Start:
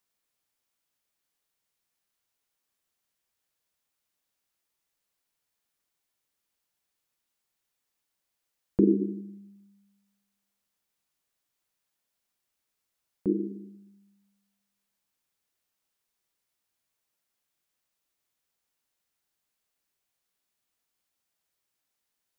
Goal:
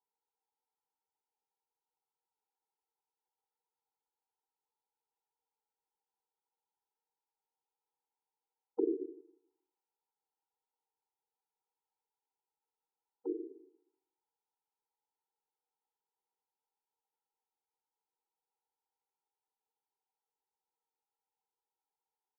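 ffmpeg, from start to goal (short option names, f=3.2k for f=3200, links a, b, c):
-af "firequalizer=gain_entry='entry(110,0);entry(170,-22);entry(540,10);entry(1200,3);entry(1700,-29)':delay=0.05:min_phase=1,afftfilt=real='re*eq(mod(floor(b*sr/1024/250),2),1)':imag='im*eq(mod(floor(b*sr/1024/250),2),1)':win_size=1024:overlap=0.75,volume=-3dB"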